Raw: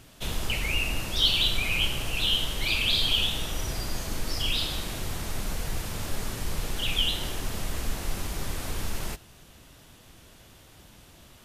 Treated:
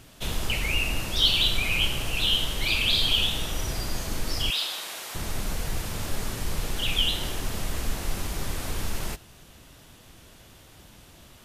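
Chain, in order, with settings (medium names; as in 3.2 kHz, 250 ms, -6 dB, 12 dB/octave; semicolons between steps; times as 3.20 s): 4.50–5.15 s: high-pass 680 Hz 12 dB/octave; trim +1.5 dB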